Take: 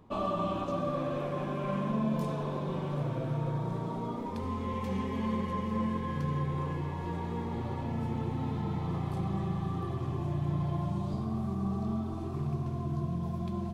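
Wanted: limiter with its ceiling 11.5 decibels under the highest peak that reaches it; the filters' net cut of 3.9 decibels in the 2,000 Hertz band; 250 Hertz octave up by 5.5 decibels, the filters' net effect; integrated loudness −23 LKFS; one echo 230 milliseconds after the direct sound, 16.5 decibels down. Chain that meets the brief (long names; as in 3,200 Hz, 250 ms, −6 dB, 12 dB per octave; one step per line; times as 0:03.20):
parametric band 250 Hz +7.5 dB
parametric band 2,000 Hz −5 dB
brickwall limiter −26.5 dBFS
single-tap delay 230 ms −16.5 dB
level +11.5 dB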